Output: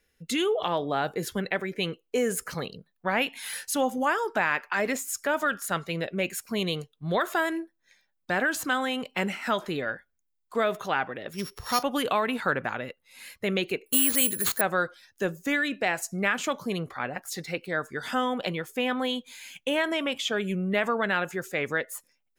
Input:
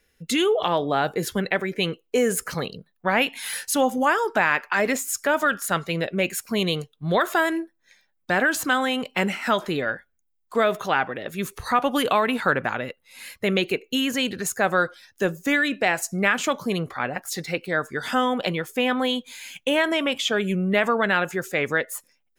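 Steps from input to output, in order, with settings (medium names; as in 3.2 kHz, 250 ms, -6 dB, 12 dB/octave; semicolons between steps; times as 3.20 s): 11.33–11.83 s: sorted samples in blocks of 8 samples; 13.86–14.61 s: careless resampling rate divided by 4×, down none, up zero stuff; trim -5 dB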